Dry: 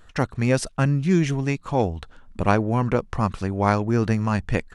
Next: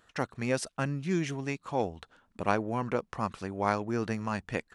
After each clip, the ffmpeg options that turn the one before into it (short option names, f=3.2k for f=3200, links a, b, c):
-af "highpass=f=270:p=1,volume=-6.5dB"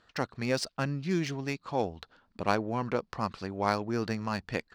-af "equalizer=f=4.6k:t=o:w=0.51:g=10.5,adynamicsmooth=sensitivity=6:basefreq=5.1k"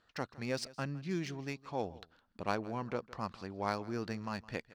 -af "aecho=1:1:162:0.1,volume=-7dB"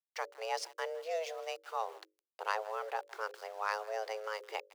-af "aeval=exprs='val(0)*gte(abs(val(0)),0.00266)':c=same,bandreject=f=50:t=h:w=6,bandreject=f=100:t=h:w=6,bandreject=f=150:t=h:w=6,bandreject=f=200:t=h:w=6,bandreject=f=250:t=h:w=6,afreqshift=320"